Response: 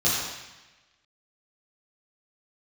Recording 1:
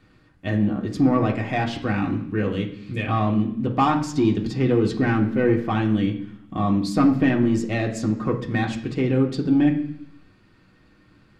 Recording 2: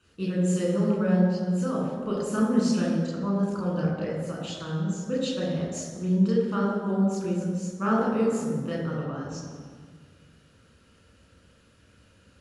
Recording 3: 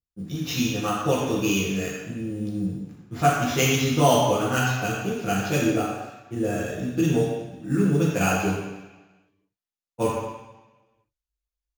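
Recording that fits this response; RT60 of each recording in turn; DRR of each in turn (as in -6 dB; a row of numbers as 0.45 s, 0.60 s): 3; 0.70 s, 1.7 s, 1.1 s; -0.5 dB, -4.5 dB, -9.5 dB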